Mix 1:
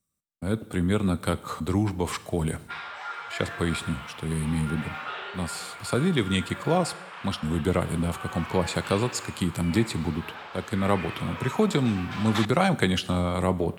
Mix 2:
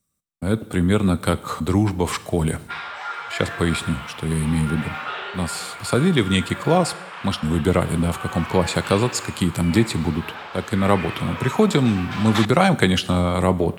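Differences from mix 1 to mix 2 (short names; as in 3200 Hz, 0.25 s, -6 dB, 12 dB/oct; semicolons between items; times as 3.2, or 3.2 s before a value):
speech +6.0 dB; background +5.5 dB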